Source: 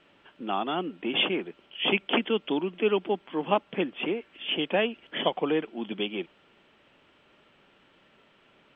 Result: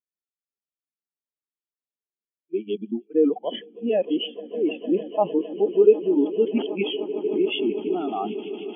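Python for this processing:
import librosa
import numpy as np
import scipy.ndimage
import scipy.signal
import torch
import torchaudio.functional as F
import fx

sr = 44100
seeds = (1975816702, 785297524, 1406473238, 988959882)

p1 = np.flip(x).copy()
p2 = fx.echo_swell(p1, sr, ms=152, loudest=8, wet_db=-14.5)
p3 = fx.over_compress(p2, sr, threshold_db=-29.0, ratio=-1.0)
p4 = p2 + (p3 * 10.0 ** (0.0 / 20.0))
p5 = fx.spectral_expand(p4, sr, expansion=2.5)
y = p5 * 10.0 ** (3.0 / 20.0)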